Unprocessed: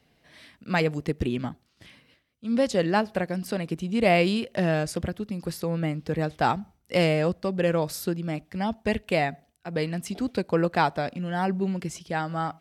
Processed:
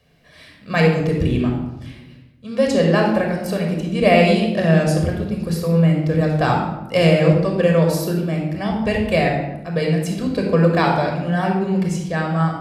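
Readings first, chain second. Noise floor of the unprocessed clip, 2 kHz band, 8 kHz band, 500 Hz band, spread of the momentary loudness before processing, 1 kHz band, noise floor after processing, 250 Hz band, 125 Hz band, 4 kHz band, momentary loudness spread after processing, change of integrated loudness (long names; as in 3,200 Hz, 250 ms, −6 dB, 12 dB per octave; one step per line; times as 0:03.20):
−68 dBFS, +7.0 dB, +5.0 dB, +8.5 dB, 9 LU, +5.5 dB, −46 dBFS, +9.0 dB, +11.5 dB, +6.5 dB, 8 LU, +8.5 dB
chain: rectangular room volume 3,900 cubic metres, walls furnished, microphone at 5.7 metres
level +2 dB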